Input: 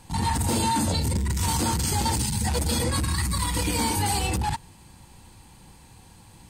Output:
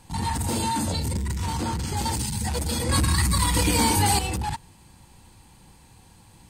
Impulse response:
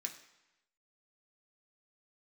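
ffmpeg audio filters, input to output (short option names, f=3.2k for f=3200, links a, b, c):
-filter_complex "[0:a]asettb=1/sr,asplit=3[a][b][c];[a]atrim=end=1.354[d];[b]atrim=start=1.35:end=1.97,asetpts=PTS-STARTPTS,afade=t=in:d=0.004:c=qsin,afade=t=out:st=0.616:d=0.004:c=qsin,lowpass=f=3.3k:p=1[e];[c]atrim=start=1.966[f];[d][e]acrossfade=d=0.004:c1=hsin:c2=qsin[g];[g][f]acrossfade=d=0.004:c1=qsin:c2=hsin,asettb=1/sr,asplit=3[h][i][j];[h]atrim=end=2.894[k];[i]atrim=start=2.89:end=4.19,asetpts=PTS-STARTPTS,afade=t=in:d=0.004:c=qsin,afade=t=out:st=1.296:d=0.004:c=qsin,acontrast=58[l];[j]atrim=start=4.186[m];[k][l]acrossfade=d=0.004:c1=hsin:c2=qsin[n];[n][m]acrossfade=d=0.004:c1=qsin:c2=hsin,volume=-2dB"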